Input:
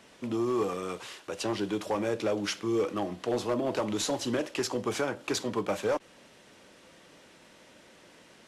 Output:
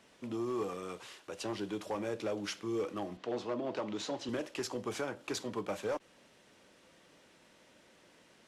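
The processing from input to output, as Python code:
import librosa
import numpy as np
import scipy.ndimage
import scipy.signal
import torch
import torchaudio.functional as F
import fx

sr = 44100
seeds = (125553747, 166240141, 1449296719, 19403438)

y = fx.bandpass_edges(x, sr, low_hz=130.0, high_hz=5000.0, at=(3.17, 4.29))
y = y * 10.0 ** (-7.0 / 20.0)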